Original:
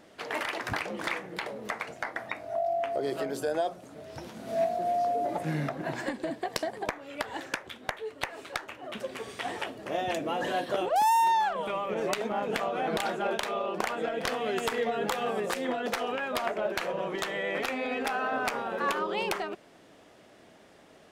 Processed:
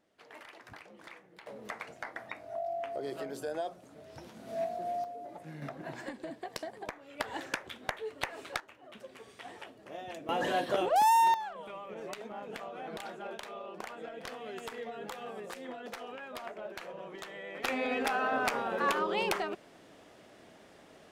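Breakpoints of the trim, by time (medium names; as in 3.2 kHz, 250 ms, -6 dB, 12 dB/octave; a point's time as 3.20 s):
-18.5 dB
from 1.47 s -7 dB
from 5.04 s -15 dB
from 5.62 s -8.5 dB
from 7.20 s -2 dB
from 8.60 s -12.5 dB
from 10.29 s -0.5 dB
from 11.34 s -12 dB
from 17.64 s -0.5 dB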